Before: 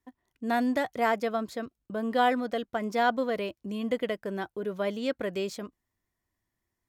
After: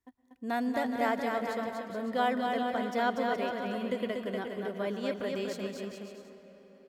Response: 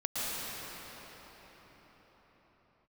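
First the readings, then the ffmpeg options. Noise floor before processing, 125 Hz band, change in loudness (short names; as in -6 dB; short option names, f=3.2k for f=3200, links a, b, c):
-84 dBFS, n/a, -2.5 dB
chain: -filter_complex "[0:a]aecho=1:1:240|420|555|656.2|732.2:0.631|0.398|0.251|0.158|0.1,asplit=2[a][b];[1:a]atrim=start_sample=2205[c];[b][c]afir=irnorm=-1:irlink=0,volume=-20dB[d];[a][d]amix=inputs=2:normalize=0,volume=-5.5dB"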